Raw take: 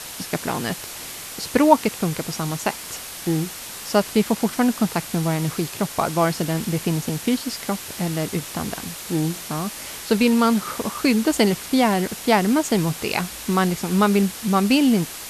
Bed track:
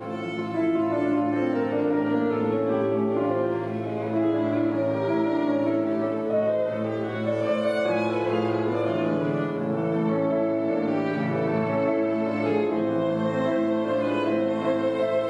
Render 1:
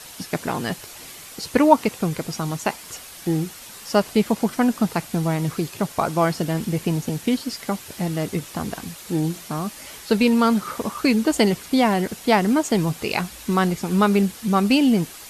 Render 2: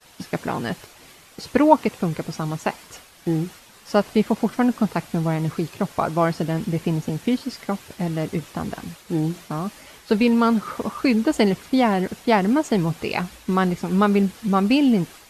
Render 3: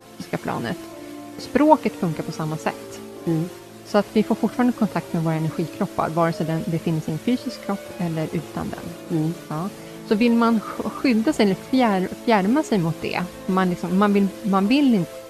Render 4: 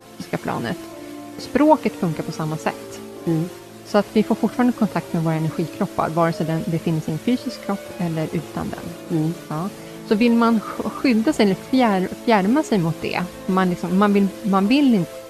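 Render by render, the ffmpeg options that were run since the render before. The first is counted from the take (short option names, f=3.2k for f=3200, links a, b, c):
-af "afftdn=nr=7:nf=-35"
-af "agate=range=-33dB:threshold=-35dB:ratio=3:detection=peak,highshelf=f=4.7k:g=-9.5"
-filter_complex "[1:a]volume=-13.5dB[a];[0:a][a]amix=inputs=2:normalize=0"
-af "volume=1.5dB,alimiter=limit=-3dB:level=0:latency=1"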